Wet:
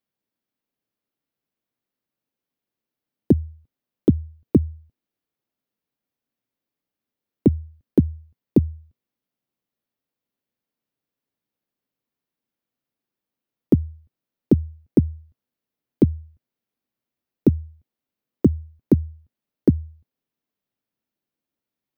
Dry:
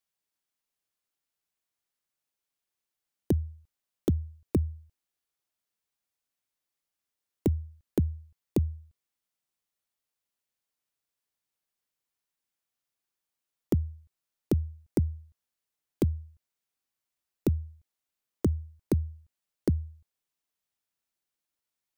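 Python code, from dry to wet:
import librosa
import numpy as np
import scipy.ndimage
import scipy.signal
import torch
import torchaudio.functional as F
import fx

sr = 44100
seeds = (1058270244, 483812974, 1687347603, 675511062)

y = fx.graphic_eq(x, sr, hz=(125, 250, 500, 8000), db=(7, 12, 5, -11))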